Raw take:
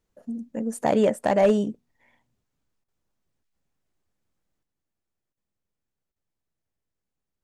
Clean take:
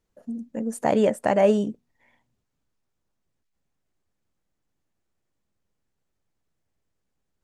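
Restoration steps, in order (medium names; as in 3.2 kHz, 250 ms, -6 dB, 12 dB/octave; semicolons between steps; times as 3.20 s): clip repair -12 dBFS; interpolate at 2.84/5.33/6.12 s, 41 ms; gain correction +7 dB, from 4.63 s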